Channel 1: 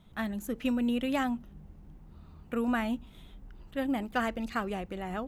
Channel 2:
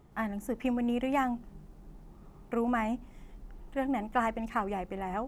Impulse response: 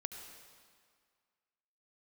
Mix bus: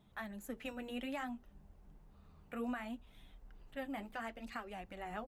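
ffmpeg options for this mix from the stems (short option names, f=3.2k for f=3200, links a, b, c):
-filter_complex "[0:a]flanger=delay=1.1:depth=9.7:regen=-41:speed=0.62:shape=sinusoidal,highpass=f=89:p=1,volume=-4dB[a];[1:a]aecho=1:1:6.7:0.34,volume=-1,volume=-14dB[b];[a][b]amix=inputs=2:normalize=0,alimiter=level_in=7dB:limit=-24dB:level=0:latency=1:release=380,volume=-7dB"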